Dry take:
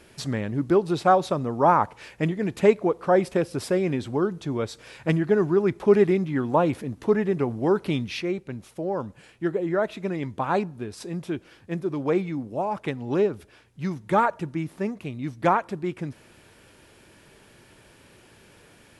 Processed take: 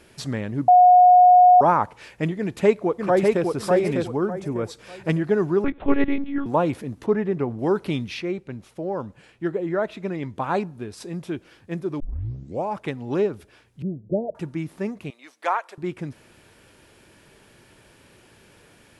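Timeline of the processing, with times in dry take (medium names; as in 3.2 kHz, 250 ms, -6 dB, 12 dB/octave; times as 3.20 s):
0.68–1.61 s: bleep 724 Hz -8.5 dBFS
2.38–3.47 s: echo throw 600 ms, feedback 30%, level -2.5 dB
4.15–4.69 s: peaking EQ 3.7 kHz -5 dB -> -13.5 dB 0.93 oct
5.64–6.46 s: monotone LPC vocoder at 8 kHz 280 Hz
7.06–7.59 s: low-pass 2.3 kHz 6 dB/octave
8.14–10.36 s: treble shelf 7.2 kHz -7.5 dB
12.00 s: tape start 0.66 s
13.82–14.35 s: steep low-pass 670 Hz 72 dB/octave
15.10–15.78 s: Bessel high-pass 740 Hz, order 4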